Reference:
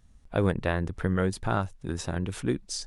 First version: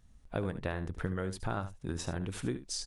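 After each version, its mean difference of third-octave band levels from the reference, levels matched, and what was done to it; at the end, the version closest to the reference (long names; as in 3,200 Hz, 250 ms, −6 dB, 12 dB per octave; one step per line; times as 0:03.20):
3.5 dB: downward compressor, threshold −27 dBFS, peak gain reduction 9 dB
on a send: single-tap delay 73 ms −12.5 dB
on the sum: level −3 dB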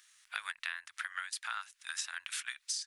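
19.0 dB: inverse Chebyshev high-pass filter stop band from 450 Hz, stop band 60 dB
downward compressor 6 to 1, threshold −48 dBFS, peak gain reduction 16.5 dB
level +12 dB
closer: first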